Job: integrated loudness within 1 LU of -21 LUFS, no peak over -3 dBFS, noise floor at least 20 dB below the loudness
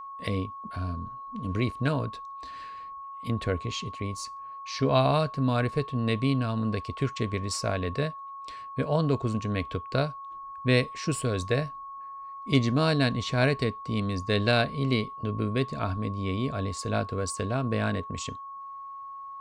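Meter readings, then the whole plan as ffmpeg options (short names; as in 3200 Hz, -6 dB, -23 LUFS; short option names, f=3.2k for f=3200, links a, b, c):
steady tone 1100 Hz; tone level -38 dBFS; loudness -28.5 LUFS; peak -9.0 dBFS; loudness target -21.0 LUFS
-> -af "bandreject=f=1.1k:w=30"
-af "volume=7.5dB,alimiter=limit=-3dB:level=0:latency=1"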